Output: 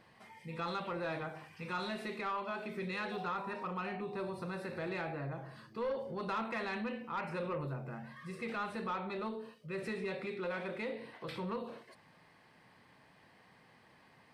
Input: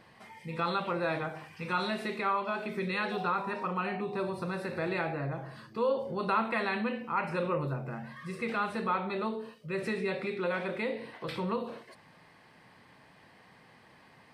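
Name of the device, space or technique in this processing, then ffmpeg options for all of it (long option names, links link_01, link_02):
saturation between pre-emphasis and de-emphasis: -af "highshelf=frequency=5000:gain=9.5,asoftclip=type=tanh:threshold=-25dB,highshelf=frequency=5000:gain=-9.5,volume=-5dB"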